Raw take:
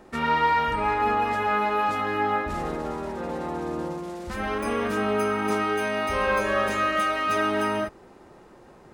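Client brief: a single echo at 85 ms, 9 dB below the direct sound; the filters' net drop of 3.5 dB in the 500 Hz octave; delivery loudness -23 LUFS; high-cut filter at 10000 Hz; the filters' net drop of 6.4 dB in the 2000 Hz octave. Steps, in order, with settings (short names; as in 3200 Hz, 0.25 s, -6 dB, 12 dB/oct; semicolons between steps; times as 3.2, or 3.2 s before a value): LPF 10000 Hz; bell 500 Hz -4 dB; bell 2000 Hz -8 dB; echo 85 ms -9 dB; gain +5 dB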